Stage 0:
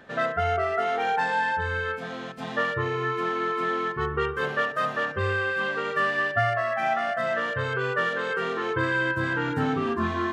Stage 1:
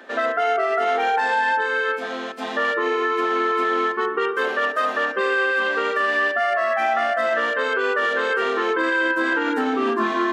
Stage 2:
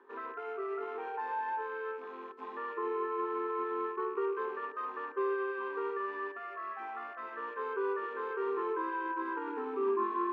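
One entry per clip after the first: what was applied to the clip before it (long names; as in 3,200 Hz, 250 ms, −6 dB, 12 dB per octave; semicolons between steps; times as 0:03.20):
Butterworth high-pass 240 Hz 48 dB per octave; brickwall limiter −19.5 dBFS, peak gain reduction 7.5 dB; level +7 dB
loose part that buzzes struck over −42 dBFS, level −23 dBFS; pair of resonant band-passes 630 Hz, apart 1.3 octaves; level −5.5 dB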